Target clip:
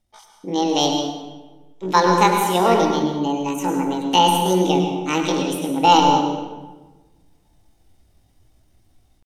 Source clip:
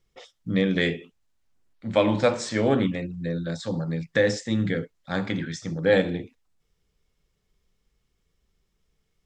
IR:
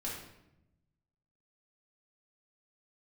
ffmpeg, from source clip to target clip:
-filter_complex "[0:a]dynaudnorm=framelen=540:gausssize=3:maxgain=11dB,aeval=exprs='0.891*(cos(1*acos(clip(val(0)/0.891,-1,1)))-cos(1*PI/2))+0.00708*(cos(4*acos(clip(val(0)/0.891,-1,1)))-cos(4*PI/2))':channel_layout=same,asetrate=74167,aresample=44100,atempo=0.594604,asplit=2[link_01][link_02];[1:a]atrim=start_sample=2205,asetrate=28224,aresample=44100,adelay=102[link_03];[link_02][link_03]afir=irnorm=-1:irlink=0,volume=-8.5dB[link_04];[link_01][link_04]amix=inputs=2:normalize=0,volume=-1dB"

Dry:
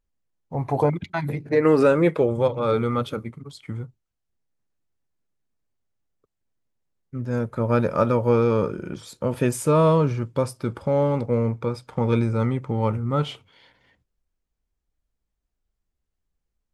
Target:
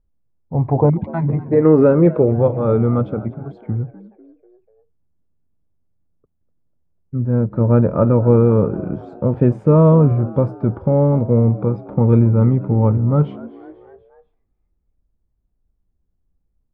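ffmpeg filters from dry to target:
ffmpeg -i in.wav -filter_complex "[0:a]lowpass=1100,lowshelf=frequency=340:gain=10,asplit=2[link_01][link_02];[link_02]asplit=4[link_03][link_04][link_05][link_06];[link_03]adelay=246,afreqshift=82,volume=-19.5dB[link_07];[link_04]adelay=492,afreqshift=164,volume=-25.2dB[link_08];[link_05]adelay=738,afreqshift=246,volume=-30.9dB[link_09];[link_06]adelay=984,afreqshift=328,volume=-36.5dB[link_10];[link_07][link_08][link_09][link_10]amix=inputs=4:normalize=0[link_11];[link_01][link_11]amix=inputs=2:normalize=0,volume=1.5dB" out.wav

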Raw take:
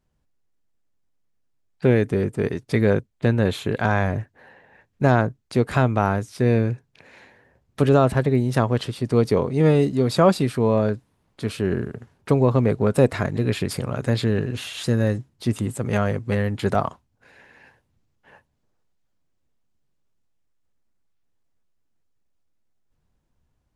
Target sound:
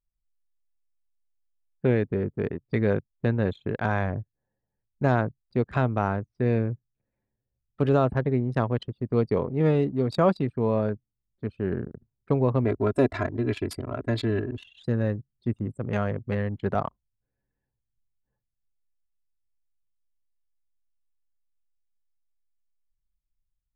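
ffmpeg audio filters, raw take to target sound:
ffmpeg -i in.wav -filter_complex "[0:a]asettb=1/sr,asplit=3[link_01][link_02][link_03];[link_01]atrim=end=12.644[link_04];[link_02]atrim=start=12.64:end=14.64,asetpts=PTS-STARTPTS,afade=type=in:duration=0.004:curve=qsin,afade=type=out:start_time=1.996:duration=0.004:curve=qsin,aecho=1:1:3:0.84,atrim=end_sample=88200[link_05];[link_03]atrim=start=14.636[link_06];[link_04][link_05]acrossfade=duration=0.004:curve1=hsin:curve2=qsin[link_07];[link_07][link_06]acrossfade=duration=0.004:curve1=qsin:curve2=hsin,anlmdn=158,highshelf=frequency=5700:gain=-5,volume=-5dB" out.wav

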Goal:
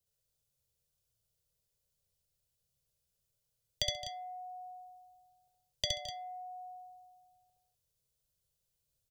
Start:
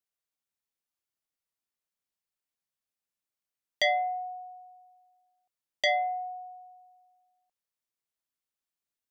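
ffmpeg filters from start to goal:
ffmpeg -i in.wav -filter_complex "[0:a]equalizer=frequency=250:width_type=o:width=1:gain=-9,equalizer=frequency=500:width_type=o:width=1:gain=8,equalizer=frequency=1000:width_type=o:width=1:gain=-10,equalizer=frequency=2000:width_type=o:width=1:gain=-10,acompressor=threshold=-31dB:ratio=6,asplit=2[link_01][link_02];[link_02]aecho=0:1:66|68|133|216|249:0.631|0.708|0.133|0.224|0.299[link_03];[link_01][link_03]amix=inputs=2:normalize=0,acrossover=split=220|3000[link_04][link_05][link_06];[link_05]acompressor=threshold=-49dB:ratio=6[link_07];[link_04][link_07][link_06]amix=inputs=3:normalize=0,lowshelf=frequency=200:width_type=q:width=1.5:gain=13,volume=5.5dB" out.wav

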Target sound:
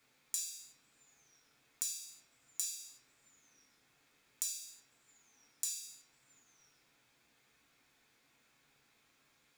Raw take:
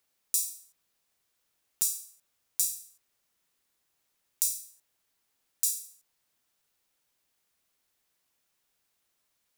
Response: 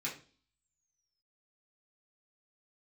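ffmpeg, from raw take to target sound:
-filter_complex "[0:a]lowpass=frequency=3500:poles=1[link_01];[1:a]atrim=start_sample=2205[link_02];[link_01][link_02]afir=irnorm=-1:irlink=0,asoftclip=type=tanh:threshold=-27dB,acompressor=threshold=-46dB:ratio=5,volume=10dB"

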